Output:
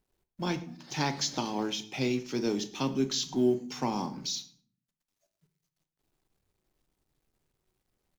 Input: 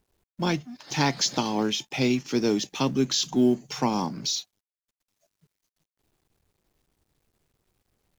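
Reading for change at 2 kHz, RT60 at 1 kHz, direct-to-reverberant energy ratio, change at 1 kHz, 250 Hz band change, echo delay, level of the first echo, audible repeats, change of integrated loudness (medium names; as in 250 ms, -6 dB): -6.5 dB, 0.45 s, 9.0 dB, -5.5 dB, -6.0 dB, 109 ms, -21.5 dB, 1, -5.5 dB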